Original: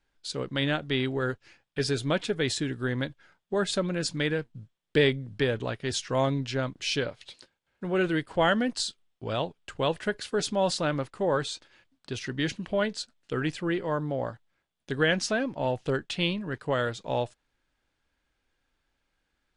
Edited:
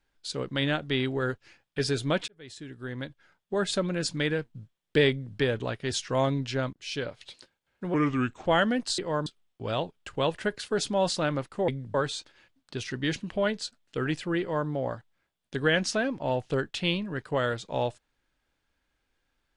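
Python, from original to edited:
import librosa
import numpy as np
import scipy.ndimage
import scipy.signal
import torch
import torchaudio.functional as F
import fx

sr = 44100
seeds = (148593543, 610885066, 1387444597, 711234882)

y = fx.edit(x, sr, fx.fade_in_span(start_s=2.28, length_s=1.42),
    fx.duplicate(start_s=5.1, length_s=0.26, to_s=11.3),
    fx.fade_in_from(start_s=6.73, length_s=0.45, floor_db=-17.5),
    fx.speed_span(start_s=7.94, length_s=0.41, speed=0.8),
    fx.duplicate(start_s=13.76, length_s=0.28, to_s=8.88), tone=tone)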